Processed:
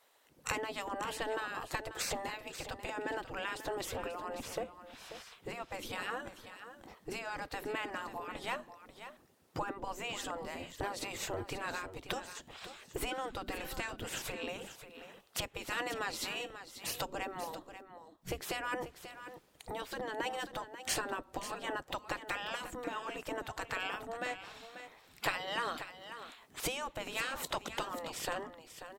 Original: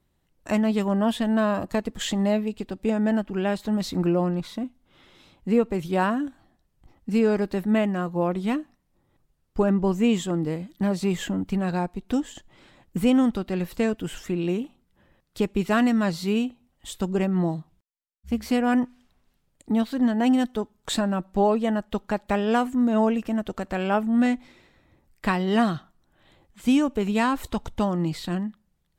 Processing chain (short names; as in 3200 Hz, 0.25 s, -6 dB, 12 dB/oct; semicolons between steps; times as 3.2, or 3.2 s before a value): bell 330 Hz +4 dB 1.9 oct; 13.11–14.05 whine 1500 Hz -23 dBFS; compressor 4:1, threshold -34 dBFS, peak gain reduction 18 dB; spectral gate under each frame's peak -15 dB weak; on a send: echo 0.538 s -11.5 dB; on the sum: gain +10 dB